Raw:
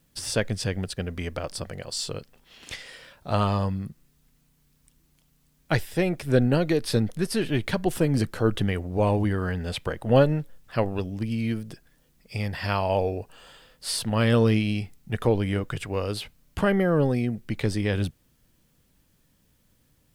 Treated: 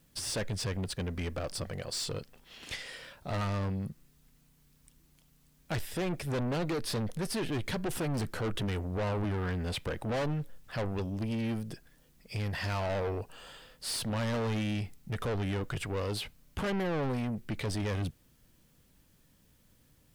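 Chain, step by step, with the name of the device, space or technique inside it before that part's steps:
saturation between pre-emphasis and de-emphasis (high-shelf EQ 9,900 Hz +7 dB; soft clipping −29.5 dBFS, distortion −5 dB; high-shelf EQ 9,900 Hz −7 dB)

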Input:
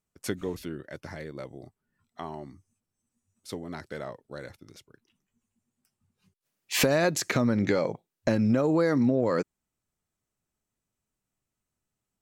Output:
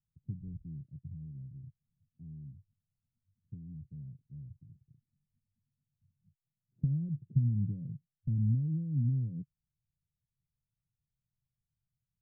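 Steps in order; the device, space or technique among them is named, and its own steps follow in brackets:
the neighbour's flat through the wall (low-pass filter 150 Hz 24 dB per octave; parametric band 140 Hz +7 dB 0.76 octaves)
level −1 dB

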